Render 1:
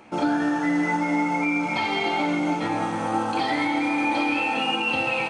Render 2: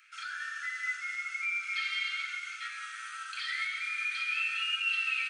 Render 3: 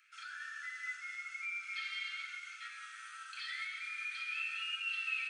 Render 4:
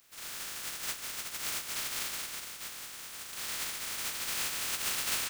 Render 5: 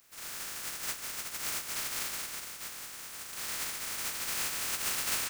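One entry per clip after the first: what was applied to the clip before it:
Butterworth high-pass 1,300 Hz 96 dB per octave; level −4.5 dB
tuned comb filter 870 Hz, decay 0.3 s, mix 70%; level +2.5 dB
compressing power law on the bin magnitudes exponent 0.1; level +5.5 dB
parametric band 3,400 Hz −3.5 dB 0.84 octaves; level +1 dB

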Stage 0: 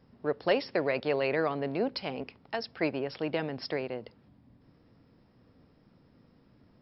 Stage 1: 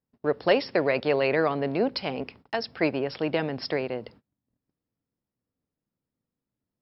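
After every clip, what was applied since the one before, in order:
noise gate −54 dBFS, range −31 dB
level +5 dB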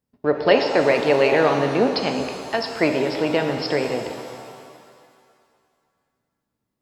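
reverb with rising layers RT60 2.2 s, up +7 semitones, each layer −8 dB, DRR 5 dB
level +5 dB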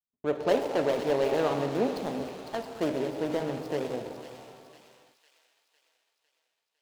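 running median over 25 samples
noise gate with hold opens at −45 dBFS
delay with a high-pass on its return 504 ms, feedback 54%, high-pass 2,600 Hz, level −7 dB
level −8 dB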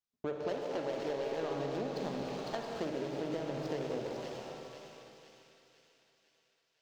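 high shelf with overshoot 7,800 Hz −7.5 dB, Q 1.5
downward compressor 12 to 1, threshold −34 dBFS, peak gain reduction 15.5 dB
four-comb reverb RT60 3.2 s, DRR 4 dB

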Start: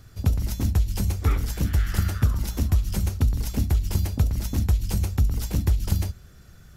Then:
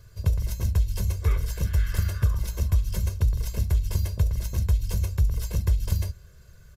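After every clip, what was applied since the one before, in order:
comb filter 1.9 ms, depth 96%
level −6 dB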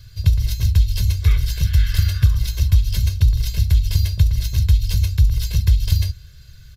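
octave-band graphic EQ 125/250/500/1,000/4,000/8,000 Hz +4/−12/−10/−9/+10/−6 dB
level +7.5 dB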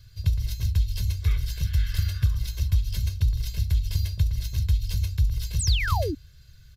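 sound drawn into the spectrogram fall, 0:05.59–0:06.15, 260–9,100 Hz −21 dBFS
level −8 dB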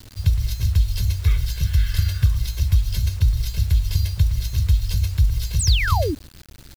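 bit reduction 8 bits
level +5 dB

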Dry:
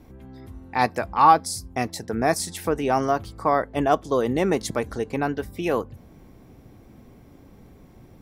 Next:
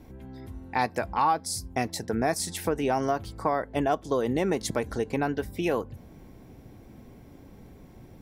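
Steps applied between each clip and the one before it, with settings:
notch filter 1,200 Hz, Q 10
downward compressor 3 to 1, threshold −23 dBFS, peak gain reduction 9.5 dB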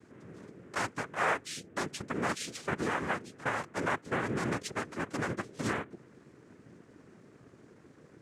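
cochlear-implant simulation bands 3
level −6.5 dB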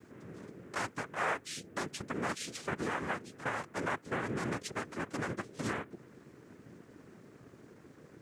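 in parallel at +1 dB: downward compressor, threshold −41 dBFS, peak gain reduction 15 dB
on the sum: bit reduction 12 bits
level −5.5 dB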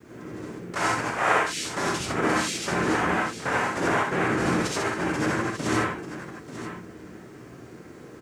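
on a send: multi-tap delay 61/890 ms −5/−12 dB
on the sum: reverb whose tail is shaped and stops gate 110 ms rising, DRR −3.5 dB
level +6 dB

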